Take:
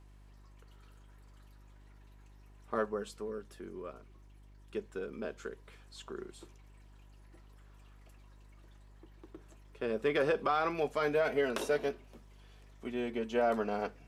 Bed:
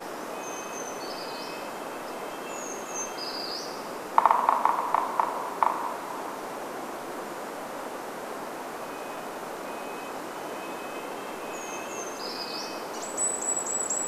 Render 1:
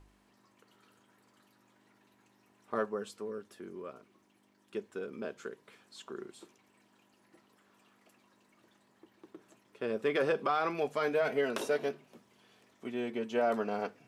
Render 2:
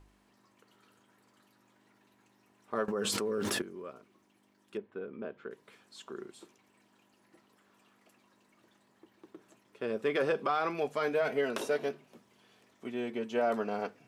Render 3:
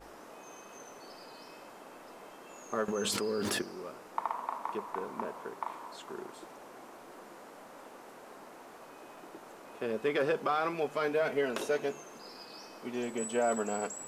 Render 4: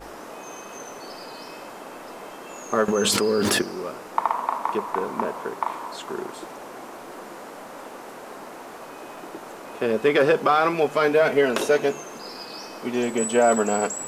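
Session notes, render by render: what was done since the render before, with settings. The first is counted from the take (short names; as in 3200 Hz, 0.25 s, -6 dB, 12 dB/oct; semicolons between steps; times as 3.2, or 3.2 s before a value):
de-hum 50 Hz, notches 3
2.88–3.62 fast leveller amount 100%; 4.77–5.51 air absorption 410 m
add bed -14.5 dB
gain +11.5 dB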